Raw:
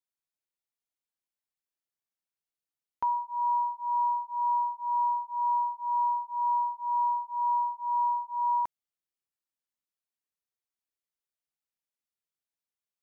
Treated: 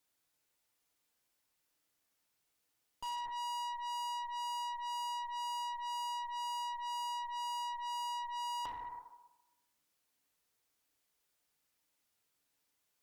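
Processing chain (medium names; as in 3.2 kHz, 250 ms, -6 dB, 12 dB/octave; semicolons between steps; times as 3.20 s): FDN reverb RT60 0.98 s, low-frequency decay 0.8×, high-frequency decay 0.65×, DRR 5 dB; valve stage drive 45 dB, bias 0.55; peak limiter -52 dBFS, peak gain reduction 10.5 dB; trim +14 dB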